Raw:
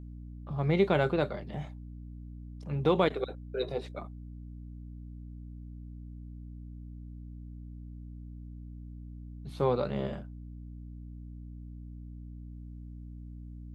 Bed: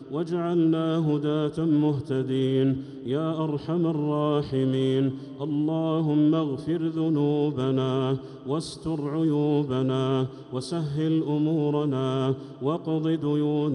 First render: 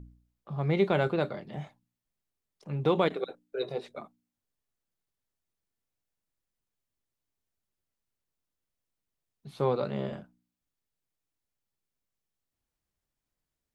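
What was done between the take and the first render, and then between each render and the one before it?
hum removal 60 Hz, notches 5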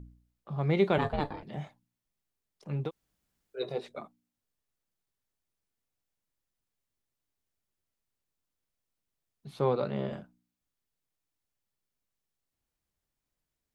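0:00.98–0:01.43: ring modulation 290 Hz
0:02.86–0:03.58: fill with room tone, crossfade 0.10 s
0:09.59–0:10.11: high-frequency loss of the air 64 metres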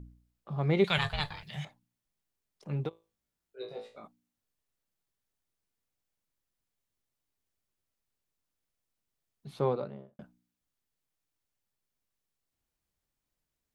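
0:00.84–0:01.65: drawn EQ curve 170 Hz 0 dB, 250 Hz −21 dB, 2,200 Hz +8 dB, 3,400 Hz +12 dB
0:02.89–0:04.04: tuned comb filter 55 Hz, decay 0.33 s, mix 100%
0:09.50–0:10.19: fade out and dull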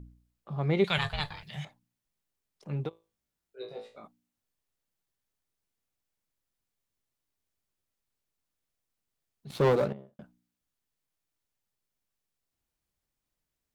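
0:09.50–0:09.93: leveller curve on the samples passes 3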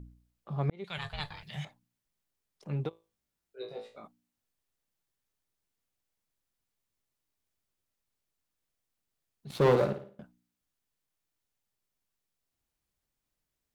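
0:00.70–0:01.56: fade in
0:09.56–0:10.21: flutter between parallel walls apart 9.5 metres, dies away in 0.4 s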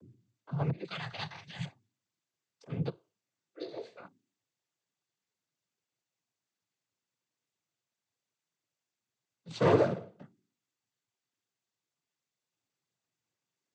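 cochlear-implant simulation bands 16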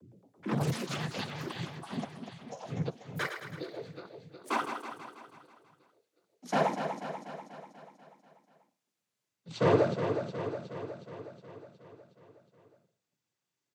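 on a send: repeating echo 365 ms, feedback 60%, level −7.5 dB
on the sum: delay with pitch and tempo change per echo 112 ms, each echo +7 semitones, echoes 3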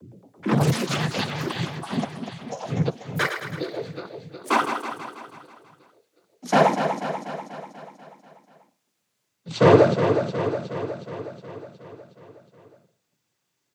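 level +10.5 dB

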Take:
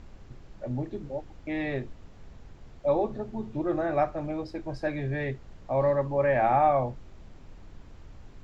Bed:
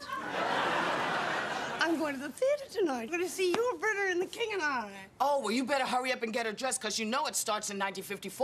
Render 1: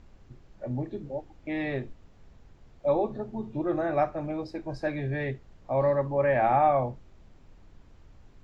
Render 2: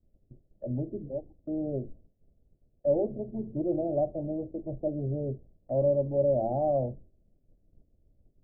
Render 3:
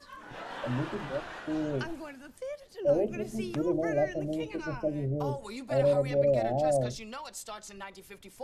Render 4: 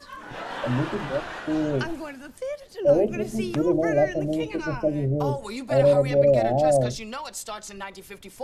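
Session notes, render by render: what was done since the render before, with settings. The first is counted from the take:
noise reduction from a noise print 6 dB
elliptic low-pass filter 630 Hz, stop band 60 dB; downward expander −43 dBFS
mix in bed −10 dB
level +7 dB

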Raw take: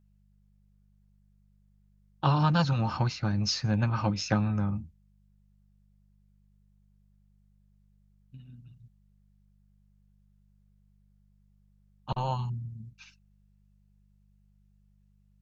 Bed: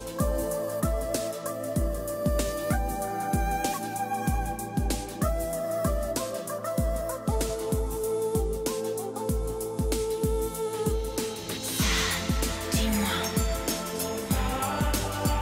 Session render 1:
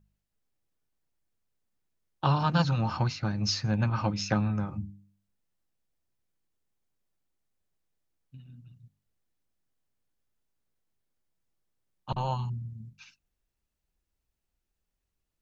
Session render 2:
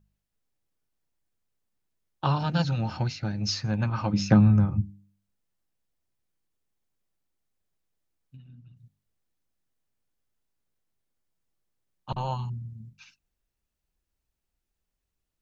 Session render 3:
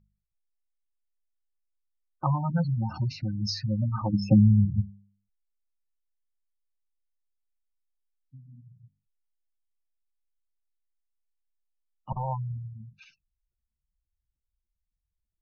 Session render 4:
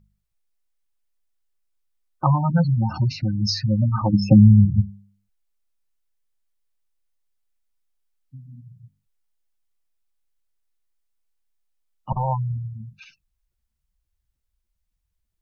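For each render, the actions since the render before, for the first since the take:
hum removal 50 Hz, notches 6
0:02.38–0:03.49: parametric band 1,100 Hz −14.5 dB 0.31 octaves; 0:04.12–0:04.81: parametric band 240 Hz → 82 Hz +11.5 dB 2.6 octaves; 0:08.36–0:08.77: high-frequency loss of the air 84 metres
gate on every frequency bin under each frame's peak −15 dB strong; low-pass filter 5,700 Hz
level +7.5 dB; brickwall limiter −3 dBFS, peak gain reduction 2.5 dB

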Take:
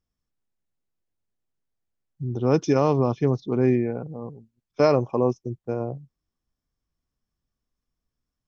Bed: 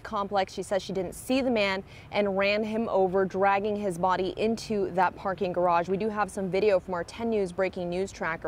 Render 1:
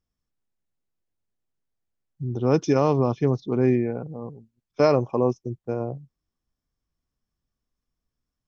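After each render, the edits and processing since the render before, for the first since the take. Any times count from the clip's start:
no processing that can be heard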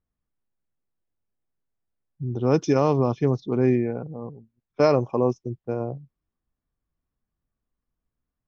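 low-pass that shuts in the quiet parts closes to 2,000 Hz, open at −17.5 dBFS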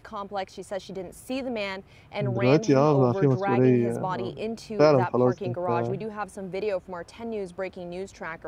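mix in bed −5 dB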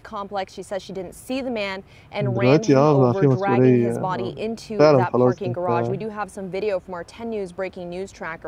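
level +4.5 dB
brickwall limiter −3 dBFS, peak gain reduction 1 dB

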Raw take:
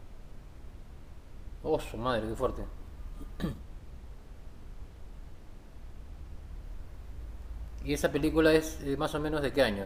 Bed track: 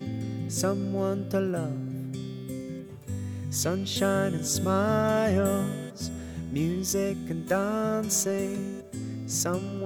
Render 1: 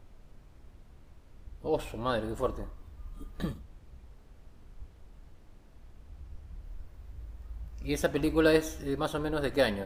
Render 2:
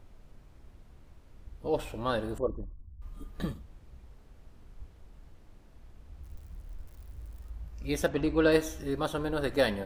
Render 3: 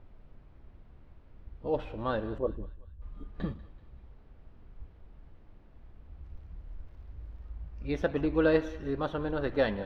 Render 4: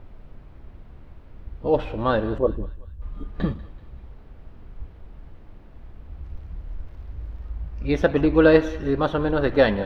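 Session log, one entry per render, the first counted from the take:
noise reduction from a noise print 6 dB
0:02.38–0:03.02: spectral envelope exaggerated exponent 2; 0:06.23–0:07.50: spike at every zero crossing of −48.5 dBFS; 0:08.08–0:08.52: high-frequency loss of the air 100 metres
high-frequency loss of the air 280 metres; feedback echo with a high-pass in the loop 191 ms, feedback 49%, high-pass 760 Hz, level −17.5 dB
level +10 dB

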